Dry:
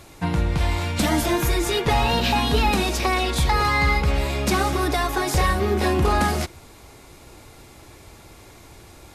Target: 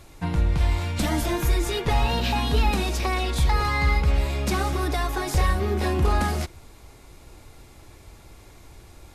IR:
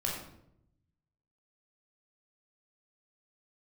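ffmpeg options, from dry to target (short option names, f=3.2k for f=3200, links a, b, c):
-af "lowshelf=f=62:g=12,volume=-5dB"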